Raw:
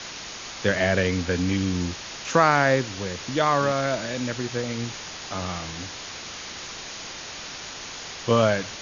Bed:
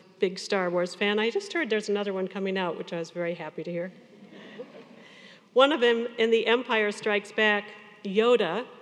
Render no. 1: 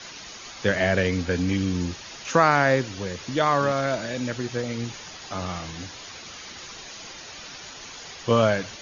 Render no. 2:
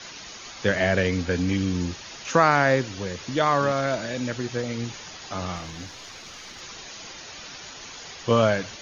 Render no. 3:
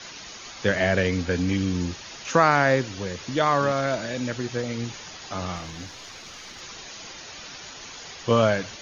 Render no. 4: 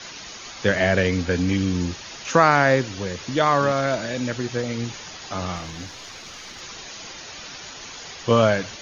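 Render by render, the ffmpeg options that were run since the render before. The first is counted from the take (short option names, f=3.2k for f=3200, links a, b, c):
-af "afftdn=nr=8:nf=-38"
-filter_complex "[0:a]asettb=1/sr,asplit=3[a][b][c];[a]atrim=end=5.564[d];[b]atrim=start=5.56:end=6.61,asetpts=PTS-STARTPTS,afade=t=in:d=0.004:c=qsin,afade=t=out:st=1.046:d=0.004:c=qsin,aeval=exprs='if(lt(val(0),0),0.708*val(0),val(0))':c=same[e];[c]atrim=start=6.606[f];[d][e]acrossfade=d=0.004:c1=hsin:c2=qsin[g];[g][f]acrossfade=d=0.004:c1=qsin:c2=hsin"
-af anull
-af "volume=2.5dB"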